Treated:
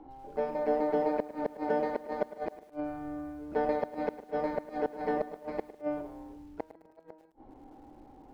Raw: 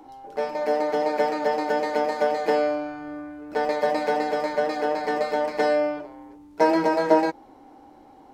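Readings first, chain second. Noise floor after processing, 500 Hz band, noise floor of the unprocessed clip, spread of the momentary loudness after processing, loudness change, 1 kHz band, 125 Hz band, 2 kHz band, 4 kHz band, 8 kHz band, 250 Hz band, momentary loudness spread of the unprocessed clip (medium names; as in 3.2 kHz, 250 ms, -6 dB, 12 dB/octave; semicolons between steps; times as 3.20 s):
-59 dBFS, -9.5 dB, -50 dBFS, 16 LU, -10.0 dB, -11.5 dB, -4.5 dB, -14.5 dB, under -20 dB, no reading, -8.0 dB, 14 LU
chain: tilt EQ -3 dB/octave; inverted gate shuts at -11 dBFS, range -36 dB; distance through air 120 m; on a send: filtered feedback delay 149 ms, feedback 44%, low-pass 2.1 kHz, level -21 dB; on the sum: bit-crushed delay 106 ms, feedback 35%, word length 8-bit, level -15 dB; trim -7 dB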